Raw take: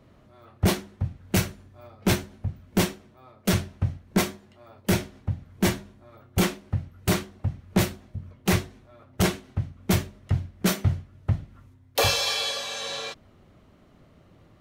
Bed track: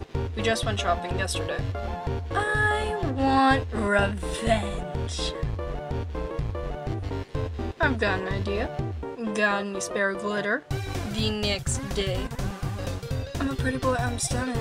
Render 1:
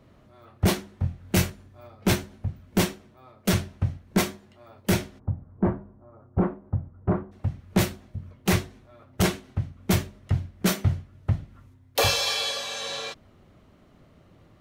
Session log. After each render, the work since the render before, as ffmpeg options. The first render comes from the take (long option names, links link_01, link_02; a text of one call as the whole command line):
ffmpeg -i in.wav -filter_complex "[0:a]asettb=1/sr,asplit=3[link_01][link_02][link_03];[link_01]atrim=end=0.944[link_04];[link_02]atrim=start=0.94:end=1.5,asetpts=PTS-STARTPTS,afade=type=in:duration=0.004:curve=qsin,afade=type=out:start_time=0.556:duration=0.004:curve=qsin,asplit=2[link_05][link_06];[link_06]adelay=23,volume=-6dB[link_07];[link_05][link_07]amix=inputs=2:normalize=0,atrim=end_sample=24696[link_08];[link_03]atrim=start=1.496[link_09];[link_04][link_08]acrossfade=duration=0.004:curve1=hsin:curve2=qsin[link_10];[link_10][link_09]acrossfade=duration=0.004:curve1=qsin:curve2=hsin,asplit=3[link_11][link_12][link_13];[link_11]afade=type=out:start_time=5.18:duration=0.02[link_14];[link_12]lowpass=frequency=1200:width=0.5412,lowpass=frequency=1200:width=1.3066,afade=type=in:start_time=5.18:duration=0.02,afade=type=out:start_time=7.31:duration=0.02[link_15];[link_13]afade=type=in:start_time=7.31:duration=0.02[link_16];[link_14][link_15][link_16]amix=inputs=3:normalize=0" out.wav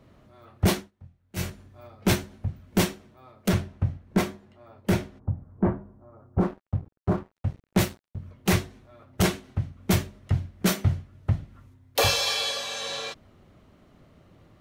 ffmpeg -i in.wav -filter_complex "[0:a]asettb=1/sr,asplit=3[link_01][link_02][link_03];[link_01]atrim=end=3.484[link_04];[link_02]atrim=start=3.48:end=5.35,asetpts=PTS-STARTPTS,afade=type=in:duration=0.004:curve=qsin,afade=type=out:start_time=1.866:duration=0.004:curve=qsin,highshelf=frequency=2800:gain=-9[link_05];[link_03]atrim=start=5.346[link_06];[link_04][link_05]acrossfade=duration=0.004:curve1=hsin:curve2=qsin[link_07];[link_07][link_06]acrossfade=duration=0.004:curve1=qsin:curve2=hsin,asplit=3[link_08][link_09][link_10];[link_08]afade=type=out:start_time=6.39:duration=0.02[link_11];[link_09]aeval=exprs='sgn(val(0))*max(abs(val(0))-0.00708,0)':channel_layout=same,afade=type=in:start_time=6.39:duration=0.02,afade=type=out:start_time=8.17:duration=0.02[link_12];[link_10]afade=type=in:start_time=8.17:duration=0.02[link_13];[link_11][link_12][link_13]amix=inputs=3:normalize=0,asplit=3[link_14][link_15][link_16];[link_14]atrim=end=0.91,asetpts=PTS-STARTPTS,afade=type=out:start_time=0.78:duration=0.13:silence=0.0841395[link_17];[link_15]atrim=start=0.91:end=1.35,asetpts=PTS-STARTPTS,volume=-21.5dB[link_18];[link_16]atrim=start=1.35,asetpts=PTS-STARTPTS,afade=type=in:duration=0.13:silence=0.0841395[link_19];[link_17][link_18][link_19]concat=n=3:v=0:a=1" out.wav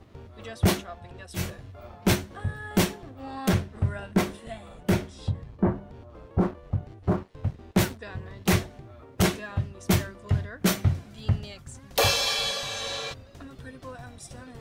ffmpeg -i in.wav -i bed.wav -filter_complex "[1:a]volume=-16.5dB[link_01];[0:a][link_01]amix=inputs=2:normalize=0" out.wav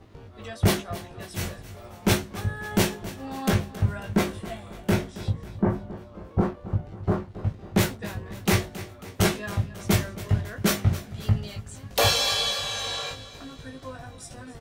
ffmpeg -i in.wav -filter_complex "[0:a]asplit=2[link_01][link_02];[link_02]adelay=19,volume=-4dB[link_03];[link_01][link_03]amix=inputs=2:normalize=0,aecho=1:1:272|544|816|1088|1360:0.168|0.0873|0.0454|0.0236|0.0123" out.wav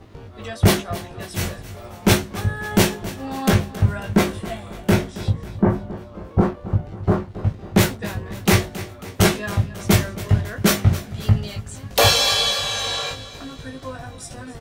ffmpeg -i in.wav -af "volume=6dB" out.wav